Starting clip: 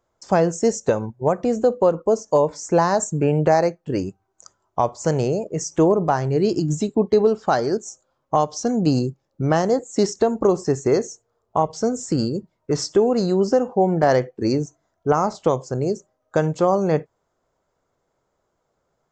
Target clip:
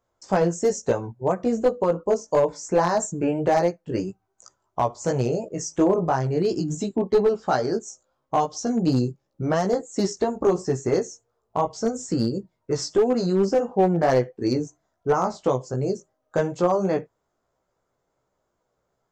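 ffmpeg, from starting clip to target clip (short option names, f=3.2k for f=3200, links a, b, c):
-af "flanger=delay=15.5:depth=2.1:speed=2.9,aeval=exprs='clip(val(0),-1,0.188)':c=same"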